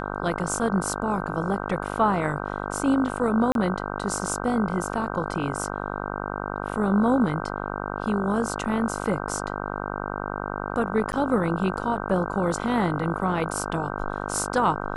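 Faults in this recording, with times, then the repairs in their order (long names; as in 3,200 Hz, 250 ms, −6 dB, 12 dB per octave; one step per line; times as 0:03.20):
mains buzz 50 Hz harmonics 31 −31 dBFS
0:03.52–0:03.55: drop-out 32 ms
0:11.12–0:11.13: drop-out 9.8 ms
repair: hum removal 50 Hz, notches 31
repair the gap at 0:03.52, 32 ms
repair the gap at 0:11.12, 9.8 ms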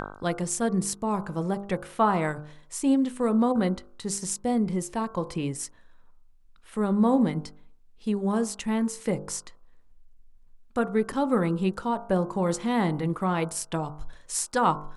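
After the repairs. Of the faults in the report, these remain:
none of them is left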